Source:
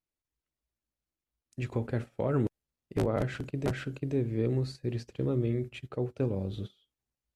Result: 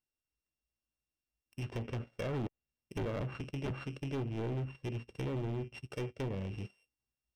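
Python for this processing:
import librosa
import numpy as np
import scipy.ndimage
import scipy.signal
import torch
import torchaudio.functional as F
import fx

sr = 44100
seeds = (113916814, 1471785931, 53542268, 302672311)

y = np.r_[np.sort(x[:len(x) // 16 * 16].reshape(-1, 16), axis=1).ravel(), x[len(x) // 16 * 16:]]
y = fx.env_lowpass_down(y, sr, base_hz=1300.0, full_db=-25.5)
y = np.clip(10.0 ** (29.5 / 20.0) * y, -1.0, 1.0) / 10.0 ** (29.5 / 20.0)
y = y * librosa.db_to_amplitude(-3.5)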